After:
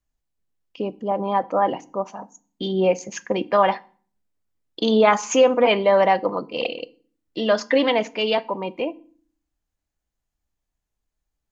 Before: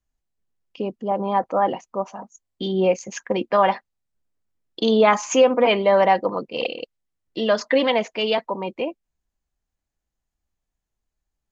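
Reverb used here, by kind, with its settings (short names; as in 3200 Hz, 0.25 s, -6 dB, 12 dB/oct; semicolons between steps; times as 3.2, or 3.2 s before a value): FDN reverb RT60 0.44 s, low-frequency decay 1.6×, high-frequency decay 0.85×, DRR 15.5 dB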